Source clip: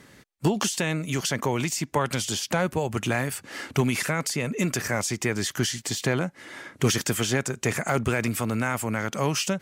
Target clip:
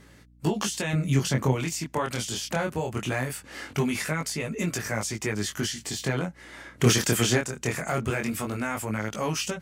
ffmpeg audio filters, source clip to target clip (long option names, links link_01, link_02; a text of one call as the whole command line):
ffmpeg -i in.wav -filter_complex "[0:a]asettb=1/sr,asplit=3[link_01][link_02][link_03];[link_01]atrim=end=0.934[link_04];[link_02]atrim=start=0.93:end=1.53,asetpts=PTS-STARTPTS,afade=type=in:duration=0.004:curve=qsin,afade=type=out:start_time=0.596:duration=0.004:curve=qsin,lowshelf=frequency=280:gain=11[link_05];[link_03]atrim=start=1.526[link_06];[link_04][link_05]acrossfade=duration=0.004:curve1=hsin:curve2=qsin[link_07];[link_07][link_06]acrossfade=duration=0.004:curve1=qsin:curve2=hsin,asplit=3[link_08][link_09][link_10];[link_08]afade=type=out:start_time=6.77:duration=0.02[link_11];[link_09]acontrast=35,afade=type=in:start_time=6.77:duration=0.02,afade=type=out:start_time=7.37:duration=0.02[link_12];[link_10]afade=type=in:start_time=7.37:duration=0.02[link_13];[link_11][link_12][link_13]amix=inputs=3:normalize=0,flanger=delay=18:depth=7.3:speed=0.21,aeval=exprs='val(0)+0.00178*(sin(2*PI*60*n/s)+sin(2*PI*2*60*n/s)/2+sin(2*PI*3*60*n/s)/3+sin(2*PI*4*60*n/s)/4+sin(2*PI*5*60*n/s)/5)':channel_layout=same" out.wav